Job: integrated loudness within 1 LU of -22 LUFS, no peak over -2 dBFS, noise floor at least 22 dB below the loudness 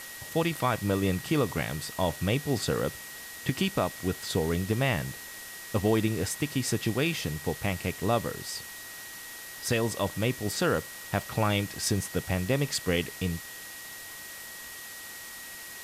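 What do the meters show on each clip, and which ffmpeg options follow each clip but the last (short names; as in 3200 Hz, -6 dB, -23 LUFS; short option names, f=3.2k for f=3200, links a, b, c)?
steady tone 1900 Hz; tone level -45 dBFS; noise floor -43 dBFS; noise floor target -53 dBFS; loudness -30.5 LUFS; peak -13.5 dBFS; loudness target -22.0 LUFS
-> -af "bandreject=f=1.9k:w=30"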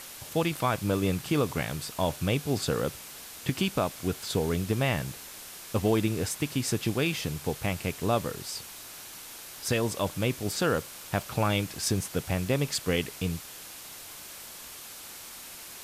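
steady tone none; noise floor -45 dBFS; noise floor target -52 dBFS
-> -af "afftdn=nr=7:nf=-45"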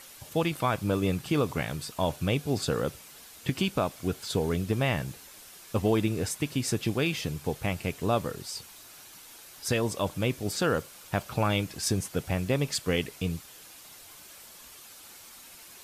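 noise floor -50 dBFS; noise floor target -52 dBFS
-> -af "afftdn=nr=6:nf=-50"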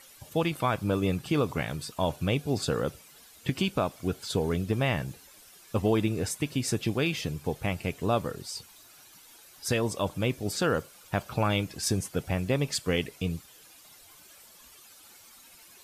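noise floor -54 dBFS; loudness -30.0 LUFS; peak -14.0 dBFS; loudness target -22.0 LUFS
-> -af "volume=8dB"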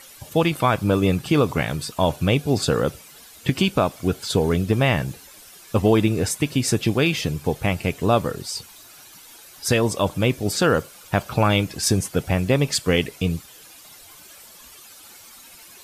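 loudness -22.0 LUFS; peak -6.0 dBFS; noise floor -46 dBFS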